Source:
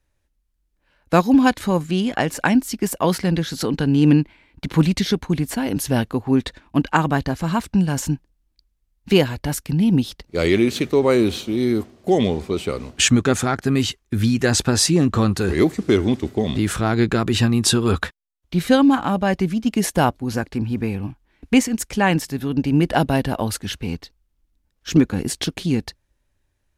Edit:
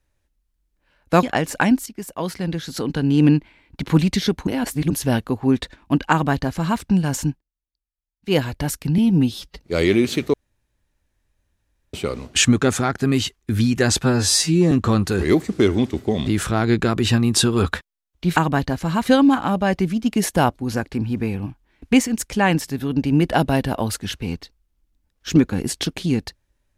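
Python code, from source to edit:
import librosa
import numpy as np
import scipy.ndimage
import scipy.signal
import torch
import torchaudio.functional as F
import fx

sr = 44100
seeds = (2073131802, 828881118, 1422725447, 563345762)

y = fx.edit(x, sr, fx.cut(start_s=1.23, length_s=0.84),
    fx.fade_in_from(start_s=2.7, length_s=1.48, floor_db=-12.5),
    fx.reverse_span(start_s=5.31, length_s=0.43),
    fx.duplicate(start_s=6.95, length_s=0.69, to_s=18.66),
    fx.fade_down_up(start_s=8.14, length_s=1.08, db=-22.5, fade_s=0.12),
    fx.stretch_span(start_s=9.82, length_s=0.41, factor=1.5),
    fx.room_tone_fill(start_s=10.97, length_s=1.6),
    fx.stretch_span(start_s=14.67, length_s=0.34, factor=2.0), tone=tone)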